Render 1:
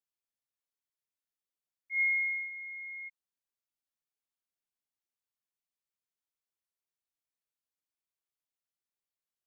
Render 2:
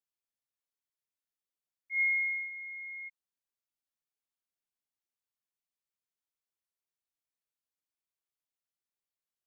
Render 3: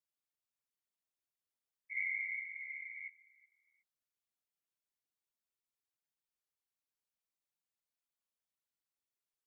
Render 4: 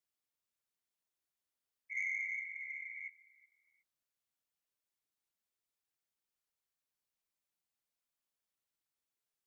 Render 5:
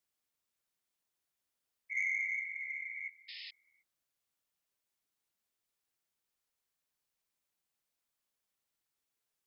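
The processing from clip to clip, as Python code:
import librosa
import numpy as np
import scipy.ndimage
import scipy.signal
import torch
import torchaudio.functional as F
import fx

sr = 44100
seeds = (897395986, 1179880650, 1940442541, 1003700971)

y1 = x
y2 = fx.echo_feedback(y1, sr, ms=367, feedback_pct=38, wet_db=-24)
y2 = fx.dynamic_eq(y2, sr, hz=2000.0, q=2.4, threshold_db=-42.0, ratio=4.0, max_db=-6)
y2 = fx.whisperise(y2, sr, seeds[0])
y2 = y2 * 10.0 ** (-3.0 / 20.0)
y3 = 10.0 ** (-29.5 / 20.0) * np.tanh(y2 / 10.0 ** (-29.5 / 20.0))
y3 = y3 * 10.0 ** (1.0 / 20.0)
y4 = fx.spec_paint(y3, sr, seeds[1], shape='noise', start_s=3.28, length_s=0.23, low_hz=1800.0, high_hz=5300.0, level_db=-51.0)
y4 = y4 * 10.0 ** (3.5 / 20.0)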